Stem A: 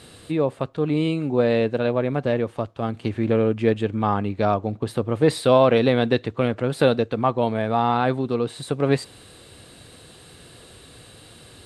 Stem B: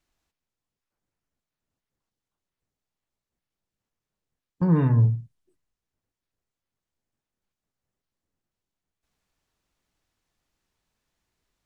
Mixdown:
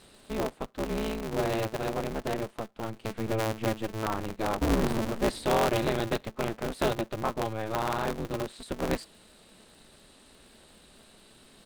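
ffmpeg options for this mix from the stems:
-filter_complex "[0:a]volume=0.335[s0];[1:a]flanger=delay=1.3:depth=5.7:regen=-10:speed=0.45:shape=sinusoidal,volume=0.944,asplit=2[s1][s2];[s2]volume=0.0944,aecho=0:1:369|738|1107|1476|1845|2214:1|0.45|0.202|0.0911|0.041|0.0185[s3];[s0][s1][s3]amix=inputs=3:normalize=0,aeval=exprs='val(0)*sgn(sin(2*PI*110*n/s))':c=same"

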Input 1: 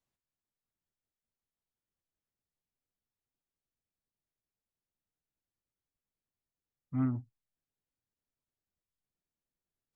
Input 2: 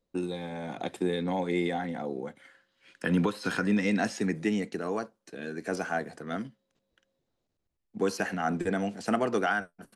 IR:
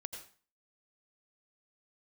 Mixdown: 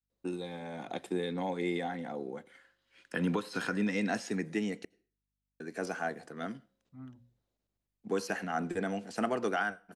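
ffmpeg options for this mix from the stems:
-filter_complex "[0:a]aeval=exprs='val(0)+0.000794*(sin(2*PI*50*n/s)+sin(2*PI*2*50*n/s)/2+sin(2*PI*3*50*n/s)/3+sin(2*PI*4*50*n/s)/4+sin(2*PI*5*50*n/s)/5)':c=same,agate=range=0.0224:threshold=0.00158:ratio=3:detection=peak,bandreject=f=60:t=h:w=6,bandreject=f=120:t=h:w=6,bandreject=f=180:t=h:w=6,bandreject=f=240:t=h:w=6,volume=0.141[s0];[1:a]lowshelf=f=100:g=-8.5,adelay=100,volume=0.596,asplit=3[s1][s2][s3];[s1]atrim=end=4.85,asetpts=PTS-STARTPTS,afade=t=out:st=4.846:d=0.004:c=hsin[s4];[s2]atrim=start=4.85:end=5.6,asetpts=PTS-STARTPTS,volume=0[s5];[s3]atrim=start=5.6,asetpts=PTS-STARTPTS,afade=t=in:d=0.004:c=hsin[s6];[s4][s5][s6]concat=n=3:v=0:a=1,asplit=2[s7][s8];[s8]volume=0.133[s9];[2:a]atrim=start_sample=2205[s10];[s9][s10]afir=irnorm=-1:irlink=0[s11];[s0][s7][s11]amix=inputs=3:normalize=0"

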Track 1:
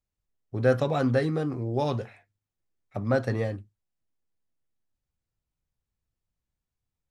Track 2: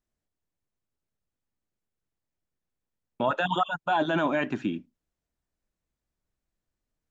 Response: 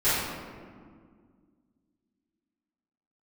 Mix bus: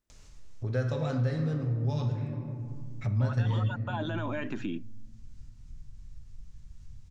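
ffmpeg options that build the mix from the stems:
-filter_complex "[0:a]asubboost=boost=11:cutoff=140,acompressor=mode=upward:threshold=0.0447:ratio=2.5,lowpass=f=6500:t=q:w=2,adelay=100,volume=0.668,asplit=2[s0][s1];[s1]volume=0.126[s2];[1:a]alimiter=level_in=1.06:limit=0.0631:level=0:latency=1:release=28,volume=0.944,volume=1.26[s3];[2:a]atrim=start_sample=2205[s4];[s2][s4]afir=irnorm=-1:irlink=0[s5];[s0][s3][s5]amix=inputs=3:normalize=0,bandreject=f=750:w=12,acompressor=threshold=0.0251:ratio=2"

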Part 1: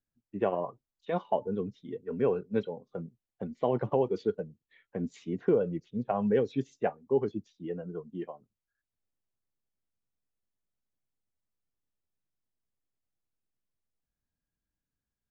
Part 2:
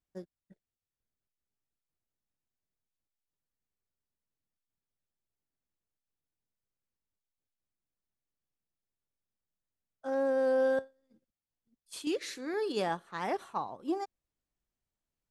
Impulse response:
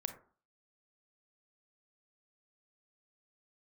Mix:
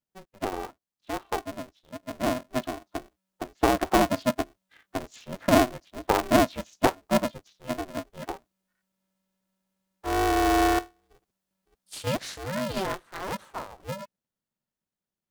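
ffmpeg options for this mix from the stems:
-filter_complex "[0:a]lowshelf=f=360:t=q:w=3:g=-11.5,equalizer=f=590:w=0.69:g=-4,volume=0.668[s0];[1:a]equalizer=f=150:w=2:g=3,volume=0.596[s1];[s0][s1]amix=inputs=2:normalize=0,dynaudnorm=f=260:g=21:m=3.16,asuperstop=centerf=2200:order=20:qfactor=5.8,aeval=exprs='val(0)*sgn(sin(2*PI*190*n/s))':c=same"

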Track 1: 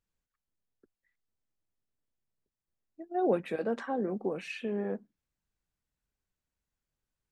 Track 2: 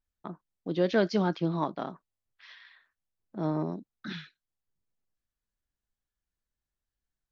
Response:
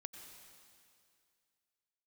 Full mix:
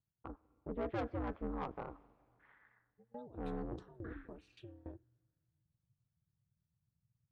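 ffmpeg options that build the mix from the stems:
-filter_complex "[0:a]equalizer=f=125:t=o:w=1:g=9,equalizer=f=250:t=o:w=1:g=9,equalizer=f=500:t=o:w=1:g=-4,equalizer=f=1000:t=o:w=1:g=6,equalizer=f=2000:t=o:w=1:g=-10,equalizer=f=4000:t=o:w=1:g=10,alimiter=limit=0.0631:level=0:latency=1,aeval=exprs='val(0)*pow(10,-22*if(lt(mod(3.5*n/s,1),2*abs(3.5)/1000),1-mod(3.5*n/s,1)/(2*abs(3.5)/1000),(mod(3.5*n/s,1)-2*abs(3.5)/1000)/(1-2*abs(3.5)/1000))/20)':c=same,volume=0.266,asplit=2[s0][s1];[s1]volume=0.0631[s2];[1:a]asubboost=boost=4.5:cutoff=100,lowpass=f=1500:w=0.5412,lowpass=f=1500:w=1.3066,asoftclip=type=tanh:threshold=0.0447,volume=0.562,asplit=2[s3][s4];[s4]volume=0.316[s5];[2:a]atrim=start_sample=2205[s6];[s2][s5]amix=inputs=2:normalize=0[s7];[s7][s6]afir=irnorm=-1:irlink=0[s8];[s0][s3][s8]amix=inputs=3:normalize=0,aeval=exprs='val(0)*sin(2*PI*120*n/s)':c=same"

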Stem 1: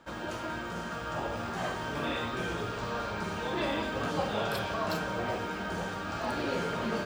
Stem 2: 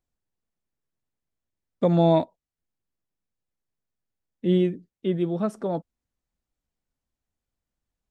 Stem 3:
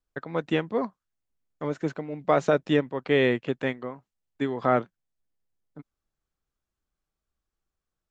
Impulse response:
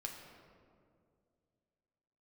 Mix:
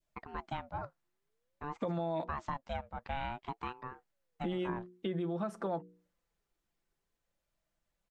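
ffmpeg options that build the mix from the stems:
-filter_complex "[1:a]equalizer=f=1700:w=0.43:g=5,bandreject=f=60:t=h:w=6,bandreject=f=120:t=h:w=6,bandreject=f=180:t=h:w=6,bandreject=f=240:t=h:w=6,bandreject=f=300:t=h:w=6,bandreject=f=360:t=h:w=6,bandreject=f=420:t=h:w=6,bandreject=f=480:t=h:w=6,aecho=1:1:5.9:0.45,volume=0.841[s0];[2:a]aeval=exprs='val(0)*sin(2*PI*490*n/s+490*0.3/0.52*sin(2*PI*0.52*n/s))':c=same,volume=0.376[s1];[s0][s1]amix=inputs=2:normalize=0,alimiter=limit=0.126:level=0:latency=1,volume=1,adynamicequalizer=threshold=0.00631:dfrequency=1100:dqfactor=1:tfrequency=1100:tqfactor=1:attack=5:release=100:ratio=0.375:range=2.5:mode=boostabove:tftype=bell,acompressor=threshold=0.0158:ratio=3"

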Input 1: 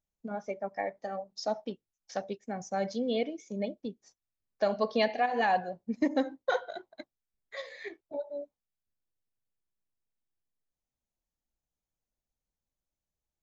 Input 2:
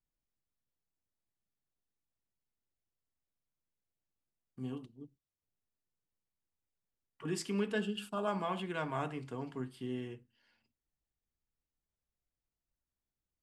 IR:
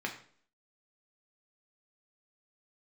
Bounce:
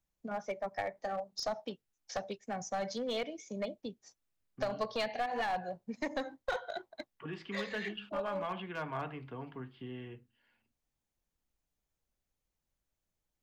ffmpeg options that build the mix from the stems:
-filter_complex "[0:a]volume=1.33[s0];[1:a]lowpass=f=3300:w=0.5412,lowpass=f=3300:w=1.3066,volume=1[s1];[s0][s1]amix=inputs=2:normalize=0,acrossover=split=160|530[s2][s3][s4];[s2]acompressor=threshold=0.00501:ratio=4[s5];[s3]acompressor=threshold=0.00447:ratio=4[s6];[s4]acompressor=threshold=0.0251:ratio=4[s7];[s5][s6][s7]amix=inputs=3:normalize=0,aeval=exprs='clip(val(0),-1,0.0282)':c=same"

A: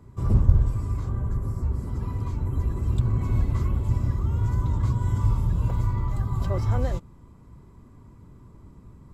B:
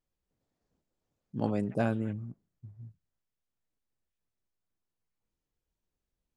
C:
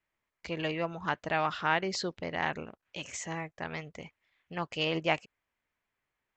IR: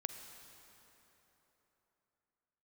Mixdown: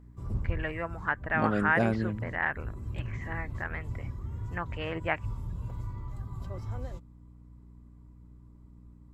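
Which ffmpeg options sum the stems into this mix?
-filter_complex "[0:a]volume=0.224[s0];[1:a]volume=1.26[s1];[2:a]lowpass=f=1700:t=q:w=3.4,volume=0.631,asplit=2[s2][s3];[s3]apad=whole_len=402683[s4];[s0][s4]sidechaincompress=threshold=0.0141:ratio=8:attack=26:release=143[s5];[s5][s1][s2]amix=inputs=3:normalize=0,aeval=exprs='val(0)+0.00282*(sin(2*PI*60*n/s)+sin(2*PI*2*60*n/s)/2+sin(2*PI*3*60*n/s)/3+sin(2*PI*4*60*n/s)/4+sin(2*PI*5*60*n/s)/5)':c=same"

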